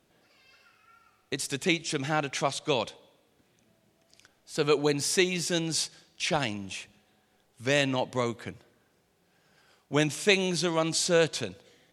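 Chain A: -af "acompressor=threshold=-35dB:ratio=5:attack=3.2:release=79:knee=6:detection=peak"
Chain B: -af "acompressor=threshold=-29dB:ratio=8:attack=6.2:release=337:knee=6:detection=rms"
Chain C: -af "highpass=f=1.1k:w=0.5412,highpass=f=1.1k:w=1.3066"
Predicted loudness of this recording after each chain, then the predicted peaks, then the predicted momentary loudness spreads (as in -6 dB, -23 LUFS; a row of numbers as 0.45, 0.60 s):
-38.5, -37.0, -31.5 LUFS; -21.5, -18.5, -8.0 dBFS; 10, 9, 13 LU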